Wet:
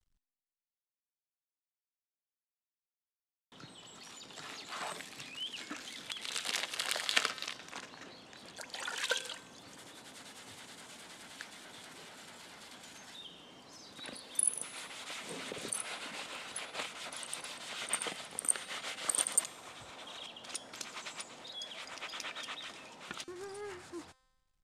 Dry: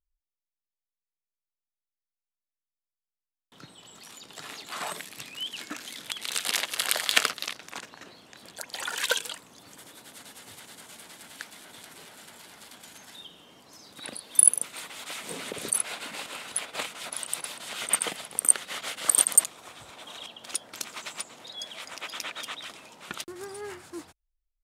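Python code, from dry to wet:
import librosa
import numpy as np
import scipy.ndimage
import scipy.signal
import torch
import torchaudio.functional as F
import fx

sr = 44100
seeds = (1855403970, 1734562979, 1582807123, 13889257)

y = fx.law_mismatch(x, sr, coded='mu')
y = scipy.signal.sosfilt(scipy.signal.butter(2, 8300.0, 'lowpass', fs=sr, output='sos'), y)
y = fx.comb_fb(y, sr, f0_hz=260.0, decay_s=1.2, harmonics='all', damping=0.0, mix_pct=60)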